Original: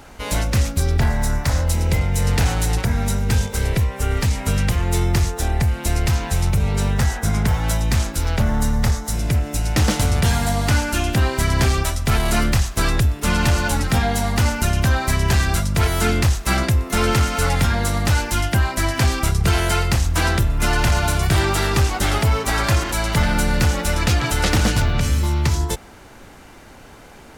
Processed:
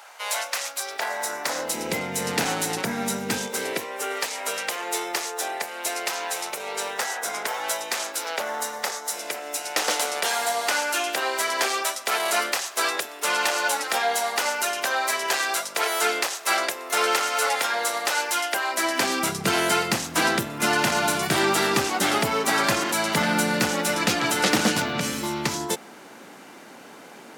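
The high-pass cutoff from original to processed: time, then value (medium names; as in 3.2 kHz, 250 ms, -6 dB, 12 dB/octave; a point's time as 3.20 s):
high-pass 24 dB/octave
0.81 s 660 Hz
1.96 s 210 Hz
3.35 s 210 Hz
4.24 s 450 Hz
18.61 s 450 Hz
19.31 s 190 Hz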